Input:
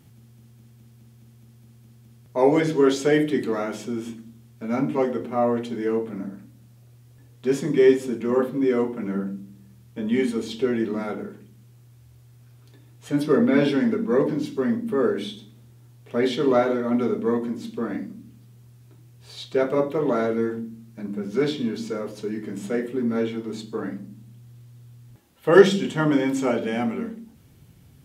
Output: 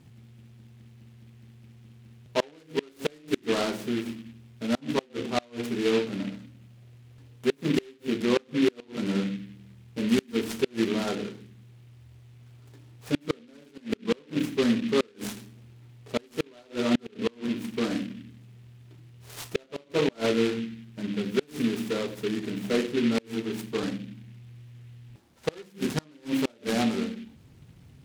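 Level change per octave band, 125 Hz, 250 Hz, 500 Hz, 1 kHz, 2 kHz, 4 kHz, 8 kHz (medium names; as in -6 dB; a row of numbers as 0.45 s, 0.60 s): -4.5 dB, -4.5 dB, -7.5 dB, -7.5 dB, -4.0 dB, +1.5 dB, no reading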